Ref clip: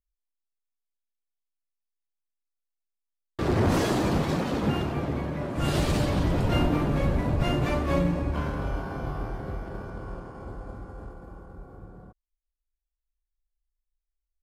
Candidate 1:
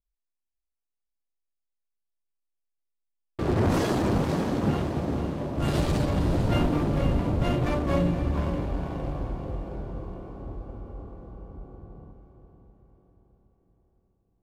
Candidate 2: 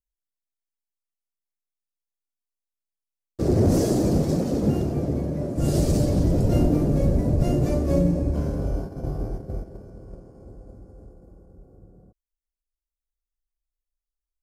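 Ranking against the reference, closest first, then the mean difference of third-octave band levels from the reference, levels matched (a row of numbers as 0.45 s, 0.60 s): 1, 2; 2.5 dB, 6.5 dB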